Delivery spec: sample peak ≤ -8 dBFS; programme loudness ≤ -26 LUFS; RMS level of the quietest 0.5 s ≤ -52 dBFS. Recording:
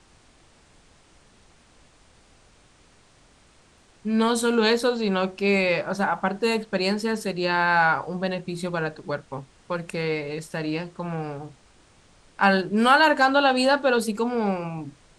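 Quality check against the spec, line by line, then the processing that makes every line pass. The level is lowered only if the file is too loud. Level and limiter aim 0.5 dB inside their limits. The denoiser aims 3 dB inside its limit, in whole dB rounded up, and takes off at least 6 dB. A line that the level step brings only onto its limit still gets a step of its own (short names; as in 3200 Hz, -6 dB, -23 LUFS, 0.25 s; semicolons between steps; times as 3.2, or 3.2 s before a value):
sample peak -5.5 dBFS: fail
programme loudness -23.0 LUFS: fail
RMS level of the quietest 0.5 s -57 dBFS: OK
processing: gain -3.5 dB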